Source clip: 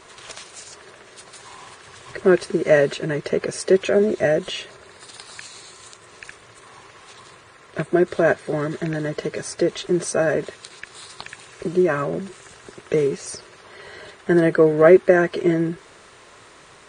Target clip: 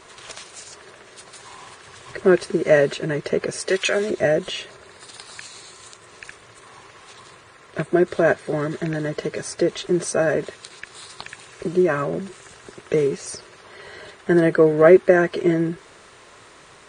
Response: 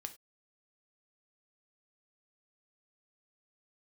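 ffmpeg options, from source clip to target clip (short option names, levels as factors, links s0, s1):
-filter_complex "[0:a]asplit=3[s0][s1][s2];[s0]afade=t=out:st=3.68:d=0.02[s3];[s1]tiltshelf=f=860:g=-10,afade=t=in:st=3.68:d=0.02,afade=t=out:st=4.09:d=0.02[s4];[s2]afade=t=in:st=4.09:d=0.02[s5];[s3][s4][s5]amix=inputs=3:normalize=0"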